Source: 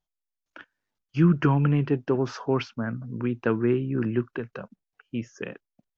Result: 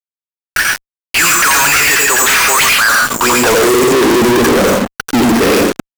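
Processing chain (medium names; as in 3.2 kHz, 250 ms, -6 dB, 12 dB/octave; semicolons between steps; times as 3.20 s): high-pass 100 Hz 12 dB/octave; careless resampling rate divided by 6×, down none, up hold; reverberation RT60 0.30 s, pre-delay 83 ms, DRR 3 dB; high-pass sweep 1.9 kHz -> 290 Hz, 2.69–4.27 s; fuzz box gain 61 dB, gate -52 dBFS; trim +4.5 dB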